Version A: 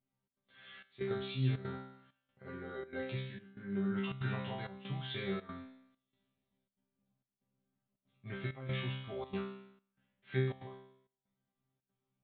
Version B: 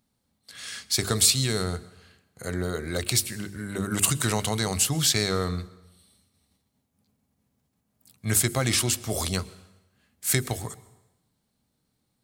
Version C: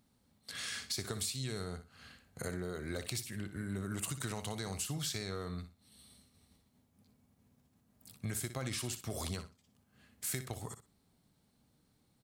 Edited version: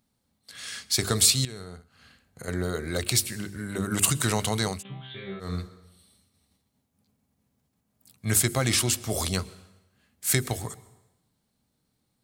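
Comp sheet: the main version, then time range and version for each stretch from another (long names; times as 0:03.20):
B
0:01.45–0:02.48: punch in from C
0:04.75–0:05.47: punch in from A, crossfade 0.16 s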